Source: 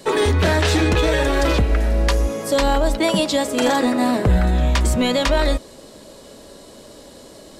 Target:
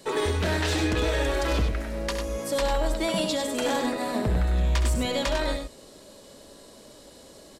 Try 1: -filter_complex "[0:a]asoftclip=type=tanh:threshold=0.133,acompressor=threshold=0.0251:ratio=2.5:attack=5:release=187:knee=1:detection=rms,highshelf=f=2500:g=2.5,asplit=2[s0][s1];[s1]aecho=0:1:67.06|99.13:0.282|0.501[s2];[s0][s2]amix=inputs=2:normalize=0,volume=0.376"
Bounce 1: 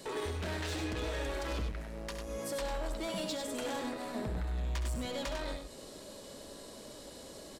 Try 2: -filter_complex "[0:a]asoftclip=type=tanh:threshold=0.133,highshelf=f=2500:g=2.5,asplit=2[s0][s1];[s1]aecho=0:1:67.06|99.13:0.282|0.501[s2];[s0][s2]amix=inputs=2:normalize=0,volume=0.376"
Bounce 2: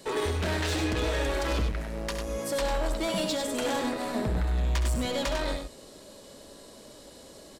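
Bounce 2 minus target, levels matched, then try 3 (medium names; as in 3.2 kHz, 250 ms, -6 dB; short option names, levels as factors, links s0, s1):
saturation: distortion +10 dB
-filter_complex "[0:a]asoftclip=type=tanh:threshold=0.335,highshelf=f=2500:g=2.5,asplit=2[s0][s1];[s1]aecho=0:1:67.06|99.13:0.282|0.501[s2];[s0][s2]amix=inputs=2:normalize=0,volume=0.376"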